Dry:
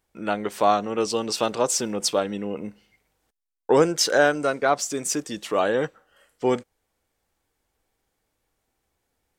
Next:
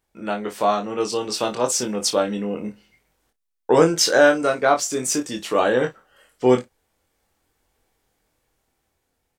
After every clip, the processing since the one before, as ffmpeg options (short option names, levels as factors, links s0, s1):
-filter_complex "[0:a]dynaudnorm=f=760:g=5:m=2.51,asplit=2[s0][s1];[s1]aecho=0:1:24|55:0.596|0.158[s2];[s0][s2]amix=inputs=2:normalize=0,volume=0.841"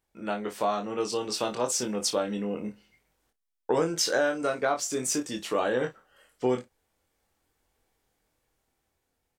-af "acompressor=threshold=0.126:ratio=3,volume=0.562"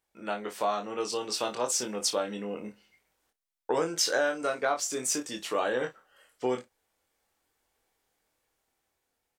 -af "lowshelf=f=280:g=-10"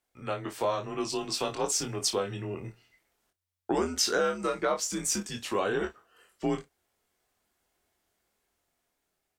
-af "afreqshift=-90"